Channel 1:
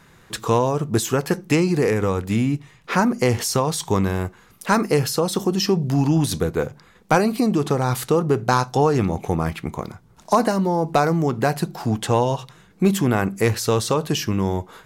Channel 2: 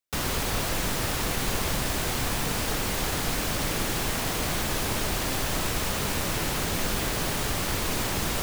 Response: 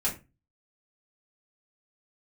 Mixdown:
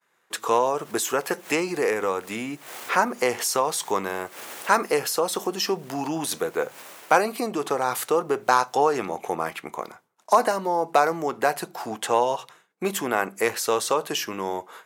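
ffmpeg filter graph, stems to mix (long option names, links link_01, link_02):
-filter_complex "[0:a]agate=range=-33dB:threshold=-41dB:ratio=3:detection=peak,volume=1dB,asplit=2[link_01][link_02];[1:a]alimiter=limit=-23.5dB:level=0:latency=1:release=13,adelay=650,volume=-2.5dB,afade=type=out:start_time=6.51:duration=0.69:silence=0.251189[link_03];[link_02]apad=whole_len=400087[link_04];[link_03][link_04]sidechaincompress=threshold=-35dB:ratio=20:attack=6.7:release=128[link_05];[link_01][link_05]amix=inputs=2:normalize=0,highpass=510,equalizer=frequency=4500:width_type=o:width=1.1:gain=-4.5"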